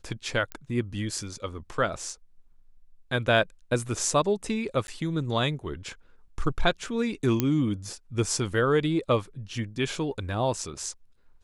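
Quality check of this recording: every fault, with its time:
0.52 s: pop -19 dBFS
4.87–4.88 s: dropout 11 ms
7.40 s: pop -9 dBFS

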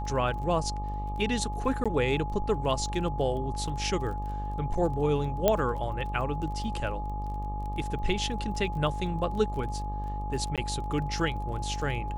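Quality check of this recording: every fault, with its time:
buzz 50 Hz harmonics 25 -34 dBFS
crackle 22 per s -38 dBFS
whine 840 Hz -36 dBFS
1.84–1.86 s: dropout 16 ms
5.48 s: pop -9 dBFS
10.56–10.58 s: dropout 17 ms

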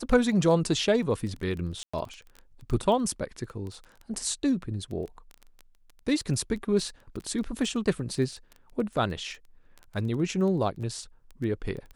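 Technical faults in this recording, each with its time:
crackle 13 per s -34 dBFS
1.83–1.94 s: dropout 105 ms

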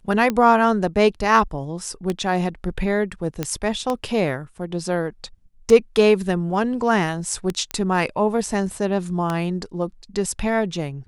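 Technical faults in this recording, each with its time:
tick 33 1/3 rpm -10 dBFS
3.43 s: pop -9 dBFS
7.71 s: pop -11 dBFS

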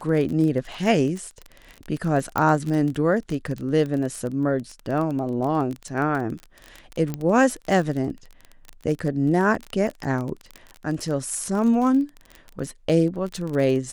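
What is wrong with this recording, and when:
crackle 26 per s -27 dBFS
2.38 s: pop -10 dBFS
7.14 s: pop -15 dBFS

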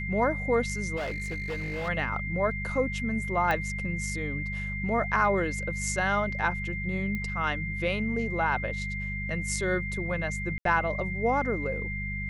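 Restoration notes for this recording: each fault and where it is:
hum 50 Hz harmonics 4 -35 dBFS
whine 2.1 kHz -34 dBFS
0.96–1.89 s: clipped -29 dBFS
3.51 s: pop -16 dBFS
7.15 s: pop -21 dBFS
10.58–10.65 s: dropout 73 ms

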